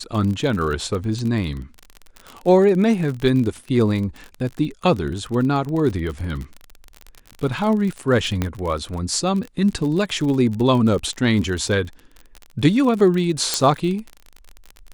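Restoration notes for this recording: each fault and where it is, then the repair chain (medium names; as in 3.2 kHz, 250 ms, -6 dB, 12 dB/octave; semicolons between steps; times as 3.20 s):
crackle 42 per s -26 dBFS
8.42 s: pop -8 dBFS
13.54 s: pop -3 dBFS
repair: de-click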